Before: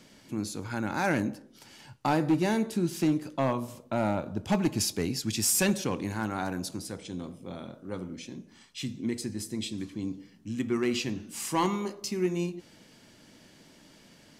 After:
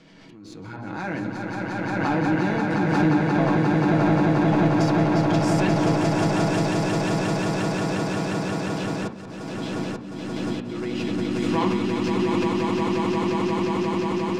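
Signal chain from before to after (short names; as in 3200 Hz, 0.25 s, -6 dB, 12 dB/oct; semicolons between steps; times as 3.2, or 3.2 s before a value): LPF 4000 Hz 12 dB/oct; bell 67 Hz -2.5 dB 0.9 oct; swelling echo 0.177 s, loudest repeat 8, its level -4 dB; in parallel at -6 dB: backlash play -37.5 dBFS; on the sum: auto swell 0.499 s; on a send at -2.5 dB: reverb RT60 0.50 s, pre-delay 6 ms; on the sum: backwards sustainer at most 24 dB/s; gain -6 dB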